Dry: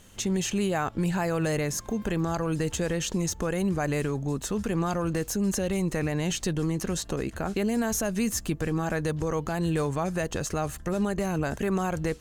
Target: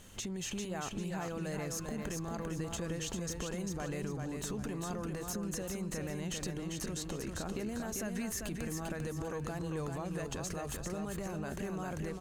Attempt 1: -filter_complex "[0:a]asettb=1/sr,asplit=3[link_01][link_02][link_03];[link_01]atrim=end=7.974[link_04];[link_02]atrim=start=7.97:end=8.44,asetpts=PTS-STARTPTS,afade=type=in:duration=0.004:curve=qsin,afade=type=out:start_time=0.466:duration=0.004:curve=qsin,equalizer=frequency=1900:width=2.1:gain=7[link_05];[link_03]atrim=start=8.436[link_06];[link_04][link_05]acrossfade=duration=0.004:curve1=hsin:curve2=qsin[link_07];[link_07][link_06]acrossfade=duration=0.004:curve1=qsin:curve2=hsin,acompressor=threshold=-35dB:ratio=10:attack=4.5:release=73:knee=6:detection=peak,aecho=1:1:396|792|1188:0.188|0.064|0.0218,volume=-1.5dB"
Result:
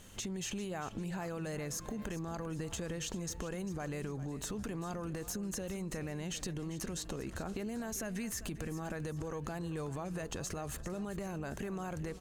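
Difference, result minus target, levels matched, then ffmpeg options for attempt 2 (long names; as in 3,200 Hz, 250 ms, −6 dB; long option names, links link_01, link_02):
echo-to-direct −10 dB
-filter_complex "[0:a]asettb=1/sr,asplit=3[link_01][link_02][link_03];[link_01]atrim=end=7.974[link_04];[link_02]atrim=start=7.97:end=8.44,asetpts=PTS-STARTPTS,afade=type=in:duration=0.004:curve=qsin,afade=type=out:start_time=0.466:duration=0.004:curve=qsin,equalizer=frequency=1900:width=2.1:gain=7[link_05];[link_03]atrim=start=8.436[link_06];[link_04][link_05]acrossfade=duration=0.004:curve1=hsin:curve2=qsin[link_07];[link_07][link_06]acrossfade=duration=0.004:curve1=qsin:curve2=hsin,acompressor=threshold=-35dB:ratio=10:attack=4.5:release=73:knee=6:detection=peak,aecho=1:1:396|792|1188|1584:0.596|0.203|0.0689|0.0234,volume=-1.5dB"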